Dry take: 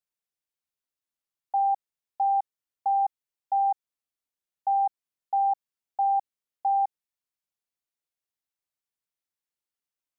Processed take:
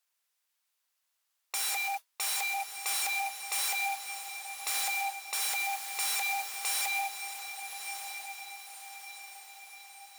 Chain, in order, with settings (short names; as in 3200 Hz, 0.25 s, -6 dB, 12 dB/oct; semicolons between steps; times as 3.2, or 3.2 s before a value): modulation noise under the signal 19 dB; added harmonics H 7 -31 dB, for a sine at -19.5 dBFS; non-linear reverb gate 0.24 s rising, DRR 8.5 dB; sine folder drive 18 dB, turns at -19.5 dBFS; on a send: diffused feedback echo 1.201 s, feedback 50%, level -8 dB; 5.4–6.7 on the sum: requantised 6-bit, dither triangular; HPF 800 Hz 12 dB/oct; gain -8.5 dB